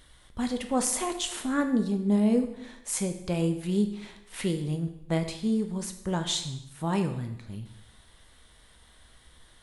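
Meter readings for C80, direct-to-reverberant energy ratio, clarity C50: 12.5 dB, 5.5 dB, 9.5 dB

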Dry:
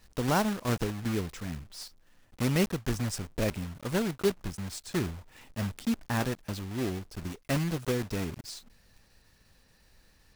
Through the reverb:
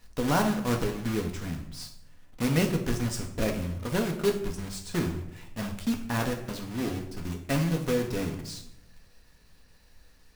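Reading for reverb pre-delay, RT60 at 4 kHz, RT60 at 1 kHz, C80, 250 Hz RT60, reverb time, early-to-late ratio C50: 4 ms, 0.50 s, 0.65 s, 12.0 dB, 1.0 s, 0.75 s, 9.0 dB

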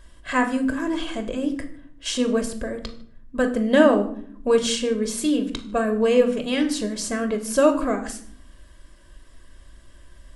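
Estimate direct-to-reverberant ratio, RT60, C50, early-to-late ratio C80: 5.5 dB, 0.60 s, 12.0 dB, 15.0 dB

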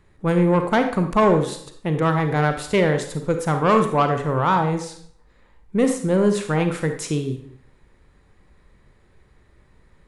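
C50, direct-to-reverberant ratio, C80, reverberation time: 7.5 dB, 6.0 dB, 11.0 dB, 0.65 s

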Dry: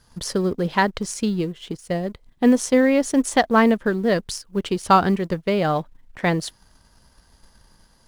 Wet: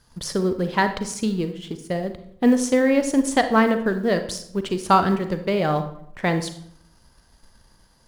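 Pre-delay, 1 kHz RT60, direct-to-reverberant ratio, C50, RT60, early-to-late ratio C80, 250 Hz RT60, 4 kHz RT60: 34 ms, 0.65 s, 8.5 dB, 10.5 dB, 0.70 s, 14.0 dB, 0.75 s, 0.50 s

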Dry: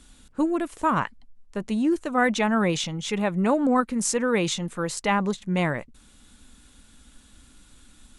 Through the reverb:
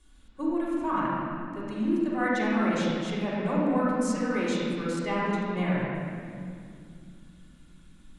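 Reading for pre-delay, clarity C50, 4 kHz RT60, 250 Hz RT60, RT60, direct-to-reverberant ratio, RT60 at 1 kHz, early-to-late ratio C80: 3 ms, -3.5 dB, 1.6 s, 3.8 s, 2.4 s, -7.5 dB, 2.2 s, -1.0 dB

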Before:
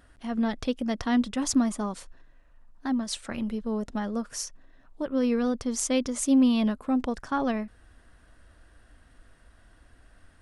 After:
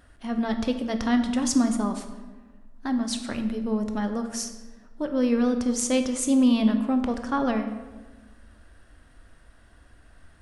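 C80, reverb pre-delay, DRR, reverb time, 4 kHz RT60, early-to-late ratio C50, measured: 10.5 dB, 13 ms, 6.5 dB, 1.3 s, 0.80 s, 9.0 dB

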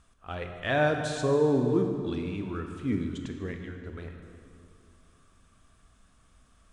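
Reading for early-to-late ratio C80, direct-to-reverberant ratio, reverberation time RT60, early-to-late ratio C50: 6.5 dB, 4.5 dB, 2.4 s, 5.5 dB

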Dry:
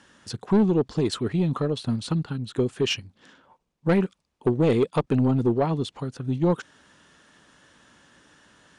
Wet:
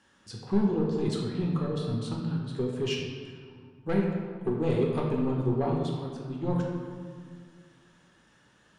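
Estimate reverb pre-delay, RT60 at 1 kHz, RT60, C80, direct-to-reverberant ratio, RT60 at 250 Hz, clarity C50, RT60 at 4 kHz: 5 ms, 1.8 s, 1.9 s, 3.5 dB, -2.0 dB, 2.5 s, 1.5 dB, 1.2 s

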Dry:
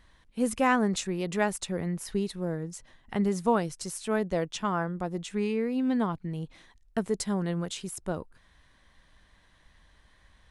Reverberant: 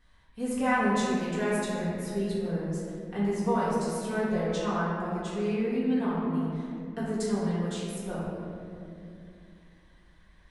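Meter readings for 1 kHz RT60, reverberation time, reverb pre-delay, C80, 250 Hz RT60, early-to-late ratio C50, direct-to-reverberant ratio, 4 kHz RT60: 2.2 s, 2.5 s, 4 ms, -0.5 dB, 3.6 s, -2.5 dB, -10.0 dB, 1.4 s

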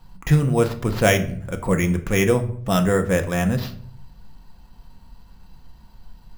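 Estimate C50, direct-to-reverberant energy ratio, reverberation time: 13.5 dB, 5.0 dB, 0.60 s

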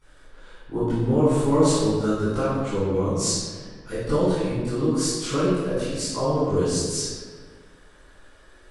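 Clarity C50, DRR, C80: -3.0 dB, -17.5 dB, 0.5 dB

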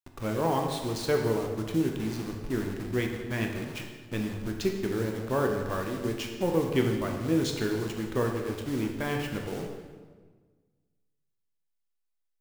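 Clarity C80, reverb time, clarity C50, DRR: 6.5 dB, 1.5 s, 4.5 dB, 2.0 dB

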